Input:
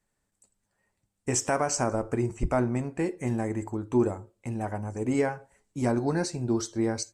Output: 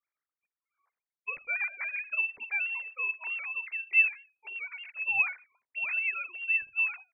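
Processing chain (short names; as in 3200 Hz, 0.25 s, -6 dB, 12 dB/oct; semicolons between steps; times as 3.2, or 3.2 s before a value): sine-wave speech; low-pass opened by the level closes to 2200 Hz, open at -23.5 dBFS; inverted band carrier 3000 Hz; gain -4 dB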